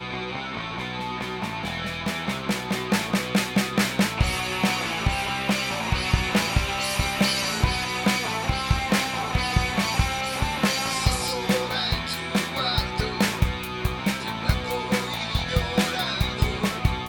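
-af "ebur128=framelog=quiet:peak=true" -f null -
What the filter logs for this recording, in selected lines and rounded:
Integrated loudness:
  I:         -24.7 LUFS
  Threshold: -34.7 LUFS
Loudness range:
  LRA:         2.1 LU
  Threshold: -44.5 LUFS
  LRA low:   -25.7 LUFS
  LRA high:  -23.5 LUFS
True peak:
  Peak:       -7.7 dBFS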